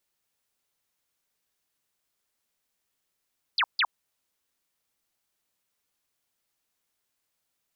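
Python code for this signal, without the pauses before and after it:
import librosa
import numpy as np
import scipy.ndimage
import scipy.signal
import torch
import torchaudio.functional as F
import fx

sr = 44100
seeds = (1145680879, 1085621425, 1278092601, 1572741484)

y = fx.laser_zaps(sr, level_db=-20.5, start_hz=5100.0, end_hz=820.0, length_s=0.06, wave='sine', shots=2, gap_s=0.15)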